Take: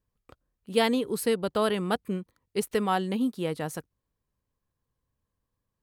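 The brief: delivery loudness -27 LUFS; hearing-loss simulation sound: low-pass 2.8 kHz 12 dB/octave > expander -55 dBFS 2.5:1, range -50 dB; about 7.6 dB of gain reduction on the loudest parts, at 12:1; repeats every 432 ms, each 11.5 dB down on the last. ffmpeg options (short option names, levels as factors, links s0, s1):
-af "acompressor=threshold=0.0447:ratio=12,lowpass=2800,aecho=1:1:432|864|1296:0.266|0.0718|0.0194,agate=range=0.00316:threshold=0.00178:ratio=2.5,volume=2.11"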